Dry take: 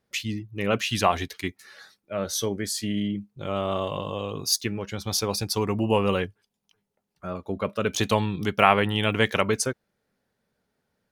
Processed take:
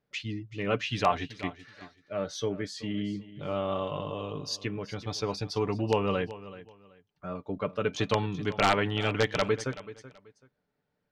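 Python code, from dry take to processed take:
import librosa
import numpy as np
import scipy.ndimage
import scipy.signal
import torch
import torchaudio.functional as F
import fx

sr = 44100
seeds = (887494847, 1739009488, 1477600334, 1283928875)

y = x + 0.41 * np.pad(x, (int(6.8 * sr / 1000.0), 0))[:len(x)]
y = (np.mod(10.0 ** (6.5 / 20.0) * y + 1.0, 2.0) - 1.0) / 10.0 ** (6.5 / 20.0)
y = fx.air_absorb(y, sr, metres=150.0)
y = fx.echo_feedback(y, sr, ms=380, feedback_pct=24, wet_db=-16)
y = y * librosa.db_to_amplitude(-4.0)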